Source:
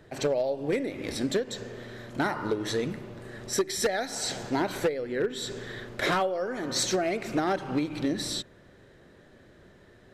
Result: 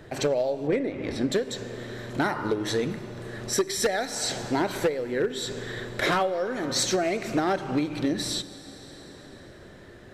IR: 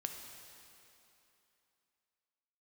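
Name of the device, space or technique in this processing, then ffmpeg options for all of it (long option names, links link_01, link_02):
ducked reverb: -filter_complex "[0:a]asplit=3[link_01][link_02][link_03];[1:a]atrim=start_sample=2205[link_04];[link_02][link_04]afir=irnorm=-1:irlink=0[link_05];[link_03]apad=whole_len=446734[link_06];[link_05][link_06]sidechaincompress=threshold=-39dB:ratio=4:attack=16:release=890,volume=4dB[link_07];[link_01][link_07]amix=inputs=2:normalize=0,asettb=1/sr,asplit=3[link_08][link_09][link_10];[link_08]atrim=end=0.674[link_11];[link_09]atrim=start=0.67:end=1.32,asetpts=PTS-STARTPTS,afade=type=in:duration=0.004:curve=qsin,afade=type=out:start_time=0.646:duration=0.004:curve=qsin,aemphasis=mode=reproduction:type=75fm[link_12];[link_10]atrim=start=1.316[link_13];[link_11][link_12]acrossfade=duration=0.004:curve1=hsin:curve2=qsin[link_14];[link_14][link_13]acrossfade=duration=0.004:curve1=qsin:curve2=hsin"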